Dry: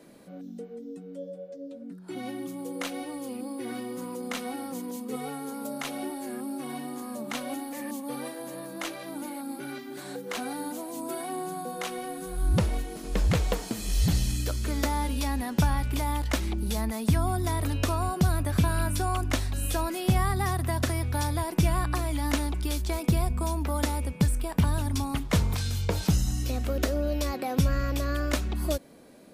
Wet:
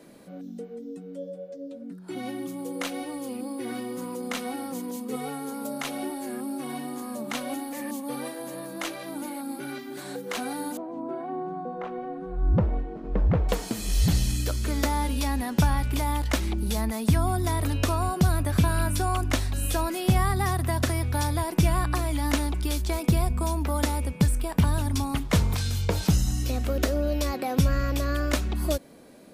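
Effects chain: 10.77–13.49 s: low-pass 1.1 kHz 12 dB/octave; trim +2 dB

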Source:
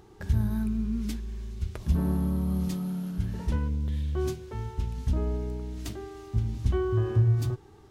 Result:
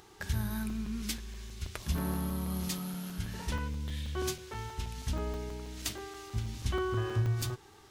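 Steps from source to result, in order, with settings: tilt shelf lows -8 dB, about 800 Hz; crackling interface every 0.16 s, samples 128, zero, from 0.70 s

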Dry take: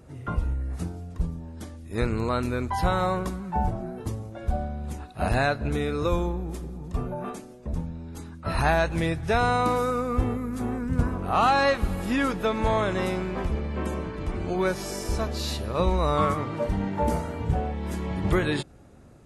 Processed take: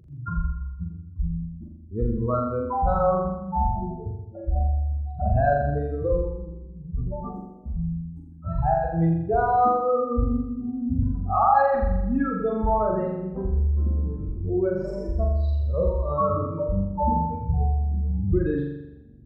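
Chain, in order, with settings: spectral contrast enhancement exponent 3.1; flutter echo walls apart 7.2 m, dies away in 0.94 s

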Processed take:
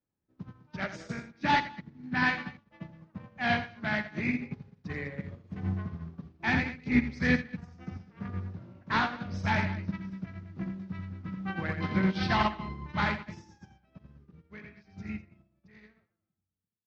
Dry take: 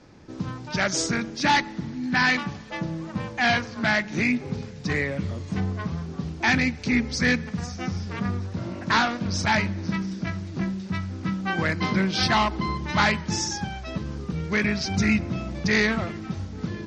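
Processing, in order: fade out at the end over 4.46 s; tone controls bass +3 dB, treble -15 dB; loudspeakers at several distances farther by 29 m -5 dB, 70 m -10 dB; dynamic bell 3.7 kHz, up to +3 dB, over -40 dBFS, Q 1.2; upward expansion 2.5:1, over -41 dBFS; trim -2.5 dB

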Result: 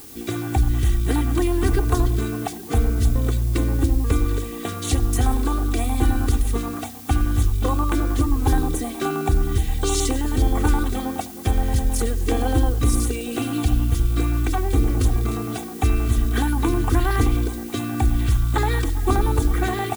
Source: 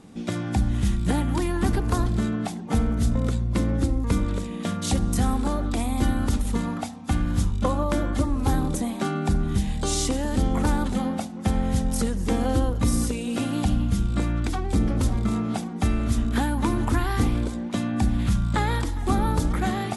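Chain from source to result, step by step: comb 2.6 ms, depth 86%; LFO notch square 9.5 Hz 860–5000 Hz; added noise blue -43 dBFS; trim +1 dB

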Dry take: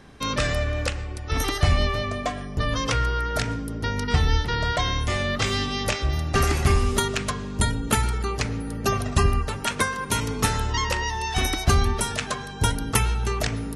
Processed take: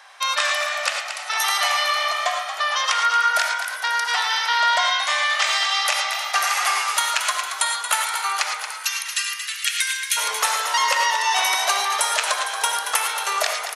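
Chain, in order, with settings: steep high-pass 710 Hz 36 dB/octave, from 8.70 s 1.8 kHz, from 10.16 s 580 Hz; compression, threshold -25 dBFS, peak gain reduction 7.5 dB; frequency-shifting echo 228 ms, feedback 58%, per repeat +58 Hz, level -9 dB; gated-style reverb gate 130 ms rising, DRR 4 dB; trim +7.5 dB

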